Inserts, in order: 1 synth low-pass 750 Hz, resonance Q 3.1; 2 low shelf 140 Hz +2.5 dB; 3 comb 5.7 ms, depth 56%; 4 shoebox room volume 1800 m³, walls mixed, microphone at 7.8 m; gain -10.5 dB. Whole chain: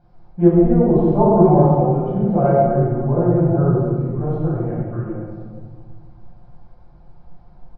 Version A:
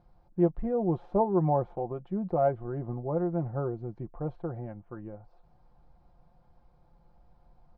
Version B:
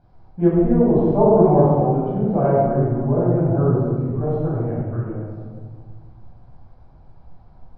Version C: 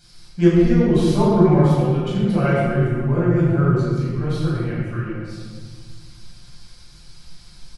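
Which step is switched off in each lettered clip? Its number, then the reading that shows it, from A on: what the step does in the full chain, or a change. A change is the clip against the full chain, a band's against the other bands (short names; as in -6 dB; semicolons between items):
4, echo-to-direct 9.0 dB to none; 3, loudness change -2.0 LU; 1, 1 kHz band -4.5 dB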